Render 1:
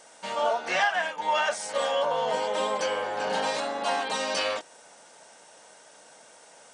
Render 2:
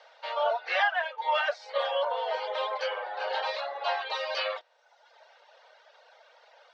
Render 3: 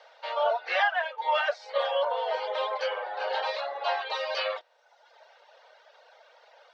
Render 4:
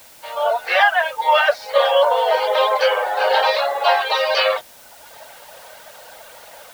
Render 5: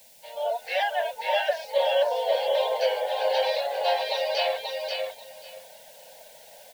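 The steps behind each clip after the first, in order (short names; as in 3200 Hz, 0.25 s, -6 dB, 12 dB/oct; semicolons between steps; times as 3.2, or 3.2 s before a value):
reverb removal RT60 1 s; elliptic band-pass 530–4300 Hz, stop band 40 dB
bell 330 Hz +2.5 dB 2.4 oct
AGC gain up to 14 dB; added noise white -46 dBFS
fixed phaser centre 330 Hz, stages 6; feedback echo 0.536 s, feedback 18%, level -4 dB; gain -7.5 dB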